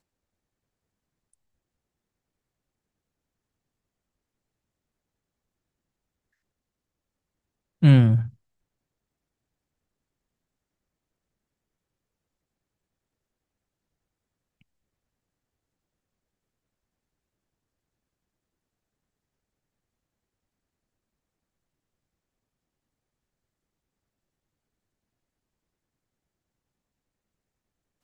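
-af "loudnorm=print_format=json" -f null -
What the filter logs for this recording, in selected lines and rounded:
"input_i" : "-18.8",
"input_tp" : "-6.6",
"input_lra" : "5.8",
"input_thresh" : "-29.8",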